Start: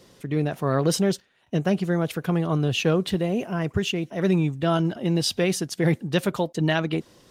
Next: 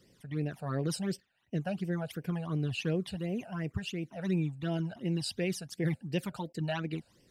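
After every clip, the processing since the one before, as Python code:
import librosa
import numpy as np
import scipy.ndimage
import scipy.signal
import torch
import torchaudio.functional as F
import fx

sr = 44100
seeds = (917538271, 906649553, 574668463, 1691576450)

y = fx.phaser_stages(x, sr, stages=12, low_hz=330.0, high_hz=1300.0, hz=2.8, feedback_pct=20)
y = F.gain(torch.from_numpy(y), -8.5).numpy()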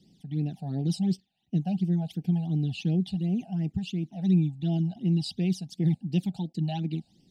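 y = fx.curve_eq(x, sr, hz=(120.0, 180.0, 330.0, 540.0, 800.0, 1100.0, 3500.0, 11000.0), db=(0, 10, 2, -12, 5, -29, 4, -8))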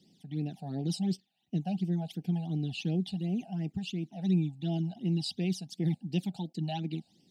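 y = fx.highpass(x, sr, hz=260.0, slope=6)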